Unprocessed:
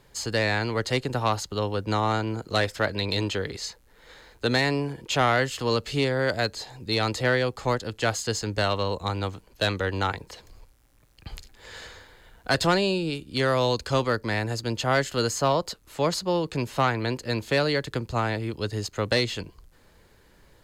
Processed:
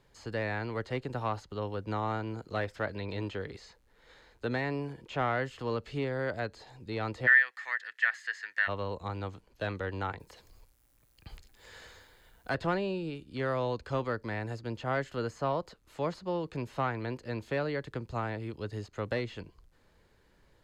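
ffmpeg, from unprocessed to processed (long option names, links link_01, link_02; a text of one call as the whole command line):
ffmpeg -i in.wav -filter_complex "[0:a]asplit=3[link_01][link_02][link_03];[link_01]afade=type=out:start_time=7.26:duration=0.02[link_04];[link_02]highpass=frequency=1800:width_type=q:width=14,afade=type=in:start_time=7.26:duration=0.02,afade=type=out:start_time=8.67:duration=0.02[link_05];[link_03]afade=type=in:start_time=8.67:duration=0.02[link_06];[link_04][link_05][link_06]amix=inputs=3:normalize=0,asettb=1/sr,asplit=3[link_07][link_08][link_09];[link_07]atrim=end=10.204[link_10];[link_08]atrim=start=10.2:end=12.55,asetpts=PTS-STARTPTS,afade=type=in:duration=0.004:curve=qsin,afade=type=out:start_time=2.346:duration=0.004:curve=qsin,aemphasis=mode=production:type=50fm[link_11];[link_09]atrim=start=12.546[link_12];[link_10][link_11]acrossfade=duration=0.004:curve1=hsin:curve2=qsin[link_13];[link_13][link_12]acrossfade=duration=0.004:curve1=qsin:curve2=hsin,acrossover=split=2600[link_14][link_15];[link_15]acompressor=threshold=-44dB:ratio=4:attack=1:release=60[link_16];[link_14][link_16]amix=inputs=2:normalize=0,highshelf=frequency=7900:gain=-9,volume=-8dB" out.wav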